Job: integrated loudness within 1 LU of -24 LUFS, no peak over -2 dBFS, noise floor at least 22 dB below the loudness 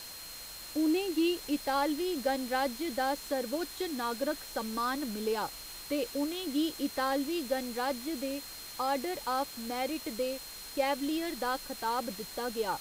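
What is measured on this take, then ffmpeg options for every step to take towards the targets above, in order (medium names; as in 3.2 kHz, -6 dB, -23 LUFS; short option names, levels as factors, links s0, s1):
steady tone 4.2 kHz; tone level -47 dBFS; noise floor -45 dBFS; noise floor target -56 dBFS; loudness -33.5 LUFS; peak level -18.0 dBFS; loudness target -24.0 LUFS
-> -af "bandreject=f=4200:w=30"
-af "afftdn=nr=11:nf=-45"
-af "volume=2.99"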